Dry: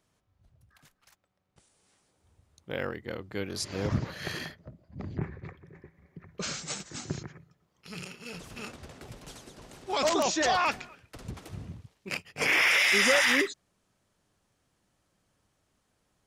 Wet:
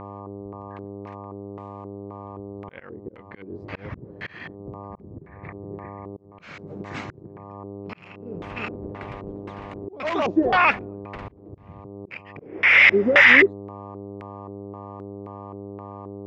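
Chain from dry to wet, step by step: mains buzz 100 Hz, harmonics 12, -45 dBFS -2 dB/octave; slow attack 501 ms; LFO low-pass square 1.9 Hz 390–2200 Hz; trim +6.5 dB

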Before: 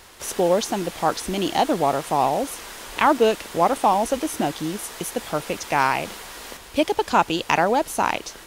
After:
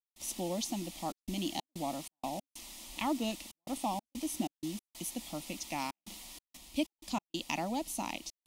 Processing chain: static phaser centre 420 Hz, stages 6; trance gate ".xxxxxx.xx.xx.x" 94 bpm -60 dB; high-order bell 750 Hz -9 dB; trim -7.5 dB

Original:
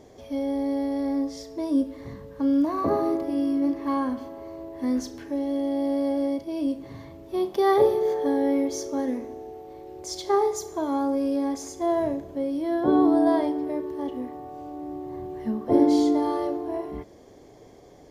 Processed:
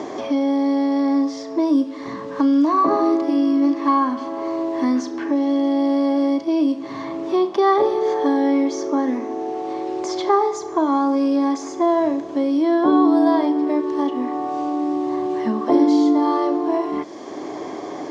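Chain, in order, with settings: cabinet simulation 300–7000 Hz, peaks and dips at 310 Hz +6 dB, 490 Hz -9 dB, 1.1 kHz +7 dB; three bands compressed up and down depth 70%; trim +7 dB

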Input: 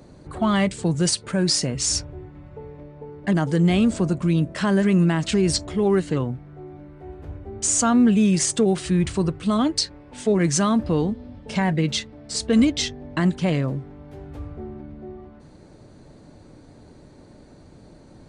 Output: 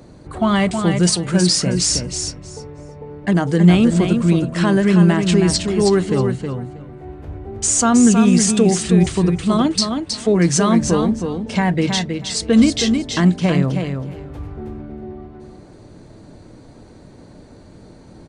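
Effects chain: feedback delay 319 ms, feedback 17%, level -6 dB; on a send at -18.5 dB: reverberation RT60 0.20 s, pre-delay 3 ms; on the sum: trim +4 dB

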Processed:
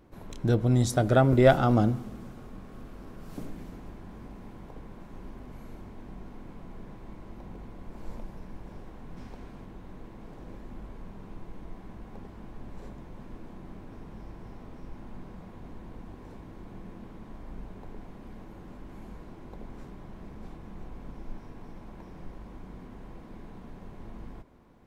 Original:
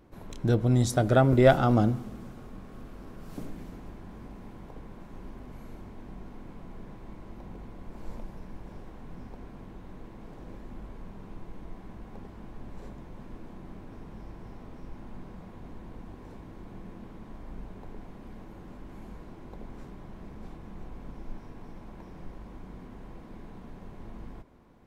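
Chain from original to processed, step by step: 9.16–9.64 s: peaking EQ 5 kHz +8 dB -> +2 dB 2.8 oct

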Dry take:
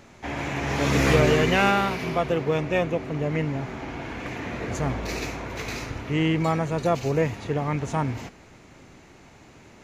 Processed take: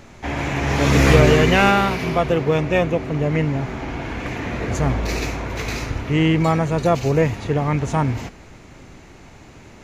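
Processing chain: bass shelf 72 Hz +9.5 dB; trim +5 dB

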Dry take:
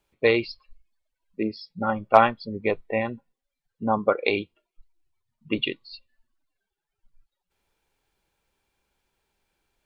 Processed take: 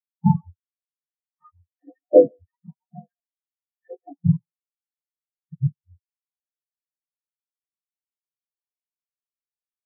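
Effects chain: spectrum inverted on a logarithmic axis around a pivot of 630 Hz; in parallel at -1.5 dB: compression 6:1, threshold -34 dBFS, peak gain reduction 20.5 dB; on the sum: speakerphone echo 140 ms, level -9 dB; touch-sensitive flanger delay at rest 5.3 ms, full sweep at -19.5 dBFS; spectral contrast expander 4:1; trim +3.5 dB

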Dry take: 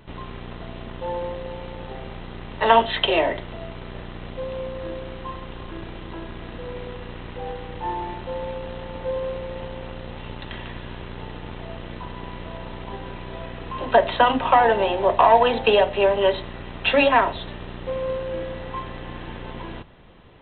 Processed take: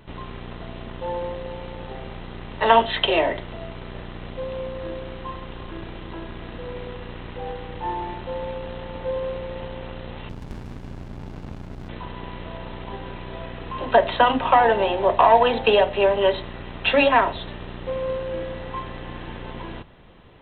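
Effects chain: 10.29–11.89 s: sliding maximum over 65 samples

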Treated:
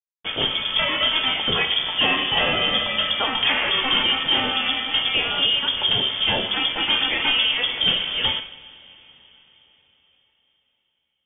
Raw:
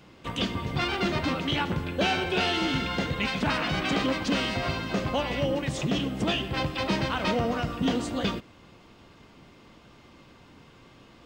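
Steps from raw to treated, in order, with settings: word length cut 6-bit, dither none; frequency inversion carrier 3.4 kHz; two-slope reverb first 0.57 s, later 4.6 s, from -20 dB, DRR 6 dB; trim +5 dB

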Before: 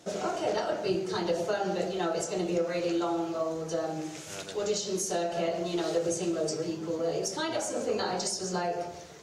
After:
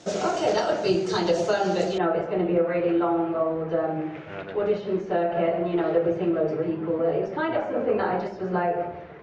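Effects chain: low-pass 7.7 kHz 24 dB/octave, from 1.98 s 2.3 kHz; trim +6.5 dB

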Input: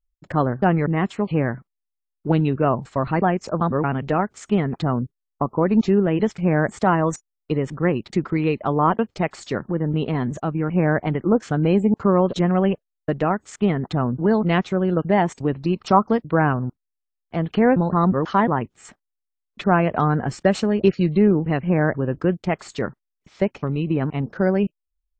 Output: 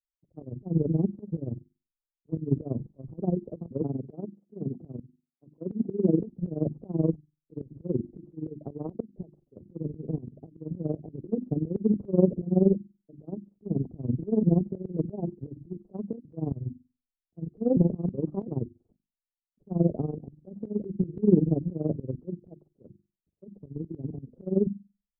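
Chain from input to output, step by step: 3.81–6.20 s: high-pass 150 Hz 12 dB/octave; hum notches 50/100/150/200/250/300/350 Hz; AM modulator 21 Hz, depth 70%; inverse Chebyshev low-pass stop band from 1.6 kHz, stop band 60 dB; slow attack 150 ms; three bands expanded up and down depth 70%

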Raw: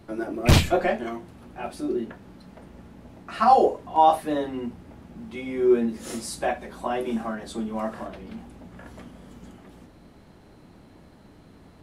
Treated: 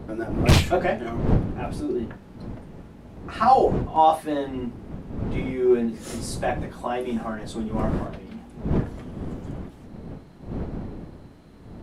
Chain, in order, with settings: wind noise 240 Hz -31 dBFS; loudspeaker Doppler distortion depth 0.2 ms

